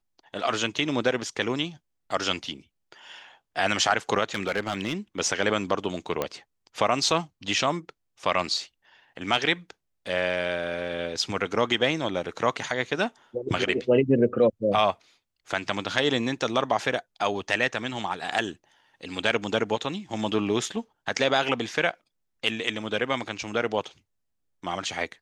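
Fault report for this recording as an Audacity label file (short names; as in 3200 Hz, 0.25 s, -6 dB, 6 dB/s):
4.340000	4.940000	clipped -20.5 dBFS
6.220000	6.220000	pop -12 dBFS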